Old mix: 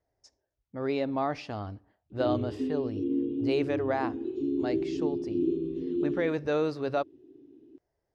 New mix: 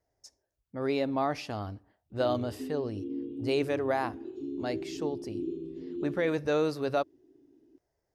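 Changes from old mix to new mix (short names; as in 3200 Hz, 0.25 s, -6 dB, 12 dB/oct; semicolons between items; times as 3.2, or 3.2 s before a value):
background -7.5 dB; master: remove air absorption 96 m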